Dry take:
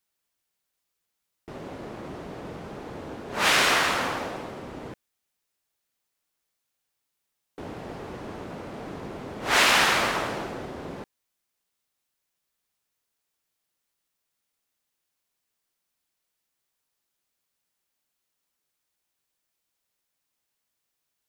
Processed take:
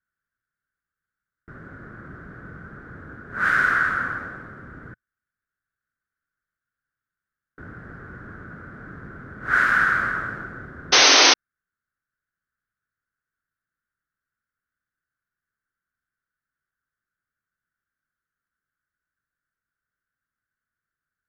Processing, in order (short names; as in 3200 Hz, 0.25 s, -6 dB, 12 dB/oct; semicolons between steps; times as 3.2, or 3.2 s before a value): EQ curve 120 Hz 0 dB, 910 Hz -18 dB, 1500 Hz +9 dB, 2600 Hz -22 dB; painted sound noise, 10.92–11.34, 260–6400 Hz -16 dBFS; gain +2.5 dB